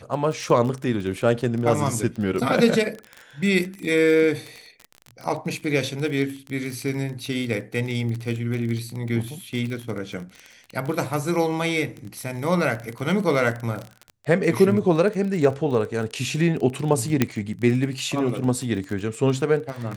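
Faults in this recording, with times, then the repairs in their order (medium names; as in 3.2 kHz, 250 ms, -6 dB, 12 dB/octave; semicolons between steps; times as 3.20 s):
crackle 23 per s -27 dBFS
17.22 s: pop -4 dBFS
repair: de-click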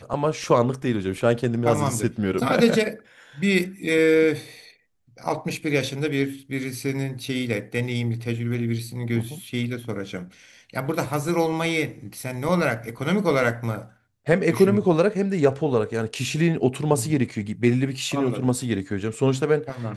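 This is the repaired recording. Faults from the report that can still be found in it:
nothing left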